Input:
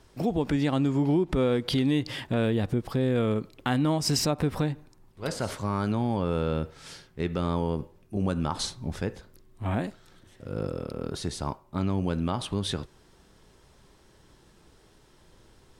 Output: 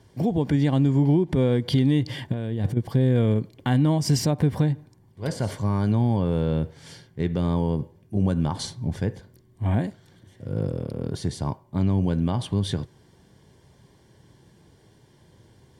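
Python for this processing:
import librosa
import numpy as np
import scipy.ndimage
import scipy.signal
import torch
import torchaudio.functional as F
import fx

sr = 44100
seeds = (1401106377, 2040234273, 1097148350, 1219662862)

y = fx.over_compress(x, sr, threshold_db=-30.0, ratio=-0.5, at=(2.32, 2.77))
y = fx.peak_eq(y, sr, hz=110.0, db=13.0, octaves=1.7)
y = fx.notch_comb(y, sr, f0_hz=1300.0)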